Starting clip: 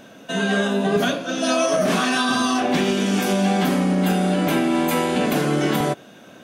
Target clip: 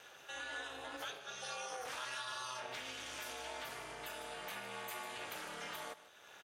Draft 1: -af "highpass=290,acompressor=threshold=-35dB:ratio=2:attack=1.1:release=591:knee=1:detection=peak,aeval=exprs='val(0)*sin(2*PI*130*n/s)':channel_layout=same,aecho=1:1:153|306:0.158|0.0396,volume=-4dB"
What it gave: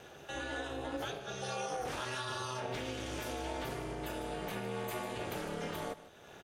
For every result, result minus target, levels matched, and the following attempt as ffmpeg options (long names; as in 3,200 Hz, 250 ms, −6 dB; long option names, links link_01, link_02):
250 Hz band +10.5 dB; downward compressor: peak gain reduction −2 dB
-af "highpass=920,acompressor=threshold=-35dB:ratio=2:attack=1.1:release=591:knee=1:detection=peak,aeval=exprs='val(0)*sin(2*PI*130*n/s)':channel_layout=same,aecho=1:1:153|306:0.158|0.0396,volume=-4dB"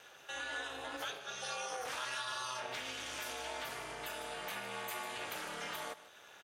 downward compressor: peak gain reduction −3.5 dB
-af "highpass=920,acompressor=threshold=-41.5dB:ratio=2:attack=1.1:release=591:knee=1:detection=peak,aeval=exprs='val(0)*sin(2*PI*130*n/s)':channel_layout=same,aecho=1:1:153|306:0.158|0.0396,volume=-4dB"